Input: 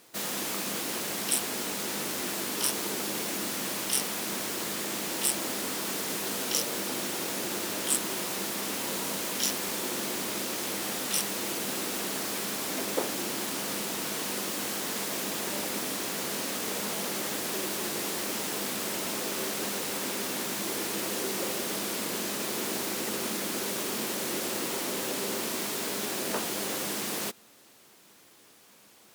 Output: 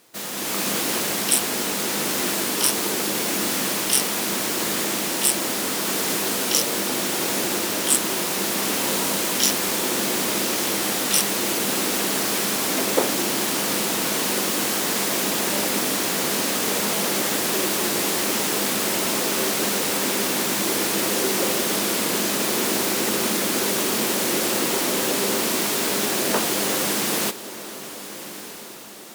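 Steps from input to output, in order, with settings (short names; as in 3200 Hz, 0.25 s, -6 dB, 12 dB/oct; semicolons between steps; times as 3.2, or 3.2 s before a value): AGC gain up to 8.5 dB; on a send: diffused feedback echo 1.302 s, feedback 46%, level -14 dB; on the sum: gain +1 dB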